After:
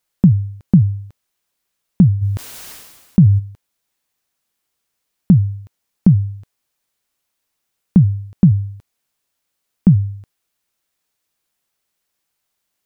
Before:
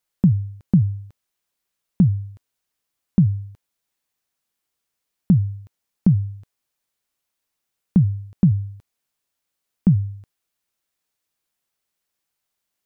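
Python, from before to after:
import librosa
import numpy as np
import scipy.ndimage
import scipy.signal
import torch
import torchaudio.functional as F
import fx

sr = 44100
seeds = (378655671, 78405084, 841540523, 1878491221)

y = fx.sustainer(x, sr, db_per_s=43.0, at=(2.21, 3.38), fade=0.02)
y = y * 10.0 ** (5.0 / 20.0)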